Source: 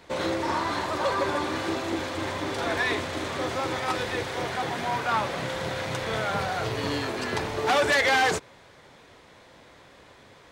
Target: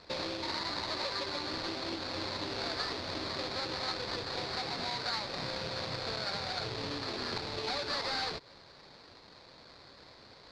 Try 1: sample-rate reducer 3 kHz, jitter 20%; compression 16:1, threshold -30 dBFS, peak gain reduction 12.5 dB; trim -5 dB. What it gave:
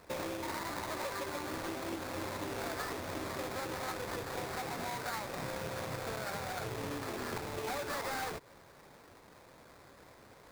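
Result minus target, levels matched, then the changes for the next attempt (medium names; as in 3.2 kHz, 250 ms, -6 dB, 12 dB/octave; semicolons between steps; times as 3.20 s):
4 kHz band -8.0 dB
add after compression: resonant low-pass 4.4 kHz, resonance Q 6.3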